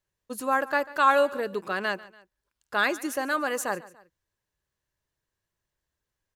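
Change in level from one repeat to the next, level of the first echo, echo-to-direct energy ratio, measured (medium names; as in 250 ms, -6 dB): -6.5 dB, -19.5 dB, -18.5 dB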